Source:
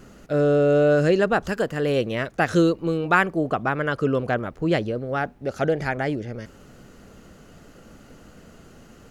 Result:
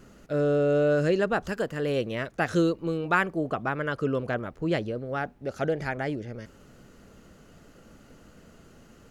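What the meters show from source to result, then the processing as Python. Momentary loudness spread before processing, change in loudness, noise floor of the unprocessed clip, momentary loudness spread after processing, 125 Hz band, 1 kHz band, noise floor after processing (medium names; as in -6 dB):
9 LU, -5.0 dB, -50 dBFS, 9 LU, -5.0 dB, -5.5 dB, -55 dBFS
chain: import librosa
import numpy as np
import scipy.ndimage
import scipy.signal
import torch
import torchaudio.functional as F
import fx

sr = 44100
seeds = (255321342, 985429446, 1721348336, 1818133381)

y = fx.notch(x, sr, hz=750.0, q=25.0)
y = y * librosa.db_to_amplitude(-5.0)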